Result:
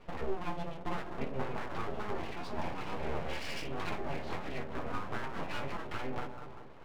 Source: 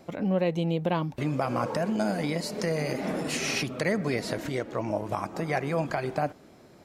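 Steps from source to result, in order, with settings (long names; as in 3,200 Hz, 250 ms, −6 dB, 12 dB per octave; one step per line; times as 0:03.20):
bucket-brigade delay 193 ms, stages 1,024, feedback 44%, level −13 dB
downward compressor, threshold −32 dBFS, peak gain reduction 11 dB
low-pass filter 3,100 Hz 24 dB per octave
low-shelf EQ 210 Hz +4.5 dB
stiff-string resonator 63 Hz, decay 0.59 s, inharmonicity 0.008
hum removal 368.1 Hz, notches 38
full-wave rectification
level +10.5 dB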